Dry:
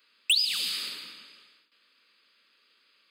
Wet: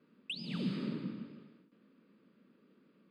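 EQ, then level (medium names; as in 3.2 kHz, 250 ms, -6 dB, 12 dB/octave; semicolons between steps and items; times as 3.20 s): band-pass filter 190 Hz, Q 1.7; tilt EQ -3.5 dB/octave; +17.0 dB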